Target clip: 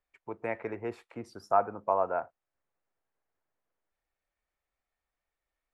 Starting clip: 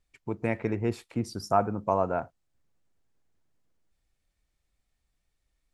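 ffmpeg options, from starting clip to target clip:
-filter_complex "[0:a]acrossover=split=430 2300:gain=0.158 1 0.178[s0][s1][s2];[s0][s1][s2]amix=inputs=3:normalize=0"

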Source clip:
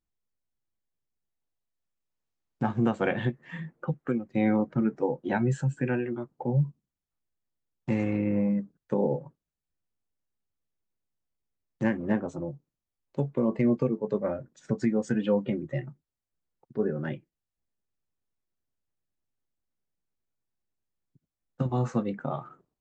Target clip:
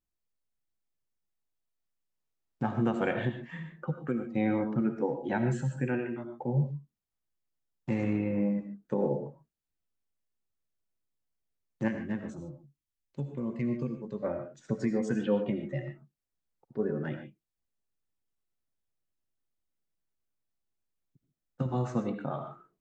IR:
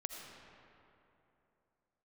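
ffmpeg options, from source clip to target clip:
-filter_complex "[0:a]asettb=1/sr,asplit=3[s0][s1][s2];[s0]atrim=end=11.884[s3];[s1]atrim=start=11.88:end=14.23,asetpts=PTS-STARTPTS,afade=t=in:d=0.004:c=qsin,afade=t=out:st=2.346:d=0.004:c=qsin,equalizer=f=630:w=0.55:g=-11[s4];[s2]atrim=start=14.226[s5];[s3][s4]acrossfade=d=0.004:c1=hsin:c2=qsin[s6];[s6][s5]acrossfade=d=0.004:c1=qsin:c2=hsin[s7];[1:a]atrim=start_sample=2205,afade=t=out:st=0.2:d=0.01,atrim=end_sample=9261[s8];[s7][s8]afir=irnorm=-1:irlink=0"

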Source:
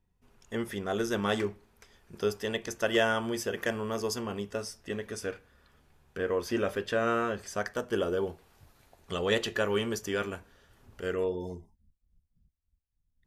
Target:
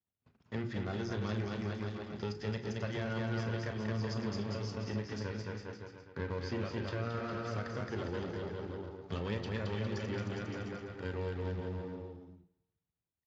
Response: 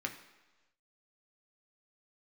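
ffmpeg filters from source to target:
-filter_complex "[0:a]aeval=exprs='if(lt(val(0),0),0.251*val(0),val(0))':c=same,bass=f=250:g=8,treble=f=4000:g=-9,bandreject=f=60:t=h:w=6,bandreject=f=120:t=h:w=6,bandreject=f=180:t=h:w=6,bandreject=f=240:t=h:w=6,bandreject=f=300:t=h:w=6,bandreject=f=360:t=h:w=6,bandreject=f=420:t=h:w=6,bandreject=f=480:t=h:w=6,agate=range=0.0891:threshold=0.00178:ratio=16:detection=peak,aecho=1:1:220|407|566|701.1|815.9:0.631|0.398|0.251|0.158|0.1,acrossover=split=250|1600[s0][s1][s2];[s0]acompressor=threshold=0.0355:ratio=4[s3];[s1]acompressor=threshold=0.00794:ratio=4[s4];[s2]acompressor=threshold=0.00398:ratio=4[s5];[s3][s4][s5]amix=inputs=3:normalize=0,equalizer=f=4700:t=o:w=0.28:g=12.5,bandreject=f=4700:w=20,asplit=2[s6][s7];[s7]highpass=140[s8];[1:a]atrim=start_sample=2205,highshelf=f=10000:g=11.5,adelay=34[s9];[s8][s9]afir=irnorm=-1:irlink=0,volume=0.282[s10];[s6][s10]amix=inputs=2:normalize=0" -ar 16000 -c:a libspeex -b:a 34k

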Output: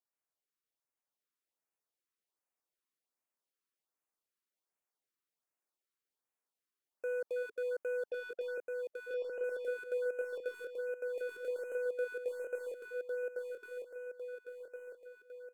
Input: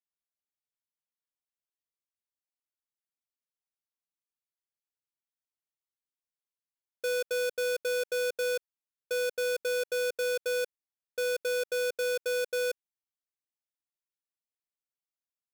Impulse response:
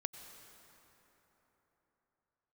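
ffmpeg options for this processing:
-filter_complex "[0:a]highpass=310,acrossover=split=1600[s0][s1];[s0]acontrast=85[s2];[s1]aeval=exprs='(tanh(224*val(0)+0.2)-tanh(0.2))/224':c=same[s3];[s2][s3]amix=inputs=2:normalize=0,alimiter=level_in=1.68:limit=0.0631:level=0:latency=1:release=10,volume=0.596,asettb=1/sr,asplit=3[s4][s5][s6];[s4]atrim=end=8.104[s7];[s5]atrim=start=8.1:end=9.44,asetpts=PTS-STARTPTS,afade=t=in:d=0.004:c=qsin,afade=t=out:st=1.336:d=0.004:c=qsin,adynamicsmooth=sensitivity=6:basefreq=560[s8];[s6]atrim=start=9.436[s9];[s7][s8]acrossfade=d=0.004:c1=hsin:c2=qsin[s10];[s10][s9]acrossfade=d=0.004:c1=qsin:c2=hsin,asplit=2[s11][s12];[s12]aecho=0:1:1104|2208|3312|4416|5520|6624|7728:0.708|0.354|0.177|0.0885|0.0442|0.0221|0.0111[s13];[s11][s13]amix=inputs=2:normalize=0,afftfilt=real='re*(1-between(b*sr/1024,640*pow(4400/640,0.5+0.5*sin(2*PI*1.3*pts/sr))/1.41,640*pow(4400/640,0.5+0.5*sin(2*PI*1.3*pts/sr))*1.41))':imag='im*(1-between(b*sr/1024,640*pow(4400/640,0.5+0.5*sin(2*PI*1.3*pts/sr))/1.41,640*pow(4400/640,0.5+0.5*sin(2*PI*1.3*pts/sr))*1.41))':win_size=1024:overlap=0.75,volume=0.794"

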